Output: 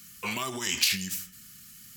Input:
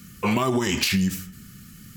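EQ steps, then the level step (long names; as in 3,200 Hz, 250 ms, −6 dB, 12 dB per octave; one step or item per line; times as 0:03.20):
tilt shelving filter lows −9 dB, about 1,400 Hz
−7.0 dB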